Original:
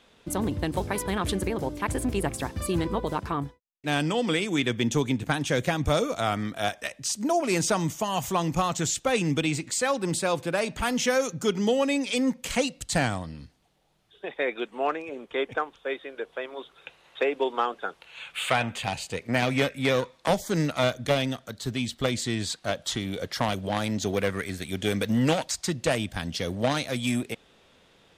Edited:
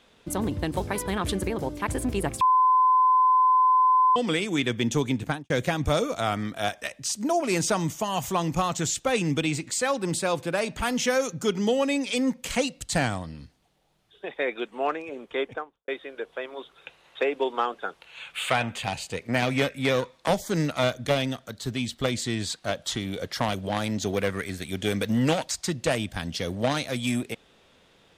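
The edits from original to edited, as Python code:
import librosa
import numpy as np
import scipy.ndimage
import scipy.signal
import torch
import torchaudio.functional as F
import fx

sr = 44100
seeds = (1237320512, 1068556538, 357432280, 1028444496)

y = fx.studio_fade_out(x, sr, start_s=5.25, length_s=0.25)
y = fx.studio_fade_out(y, sr, start_s=15.37, length_s=0.51)
y = fx.edit(y, sr, fx.bleep(start_s=2.41, length_s=1.75, hz=1020.0, db=-16.0), tone=tone)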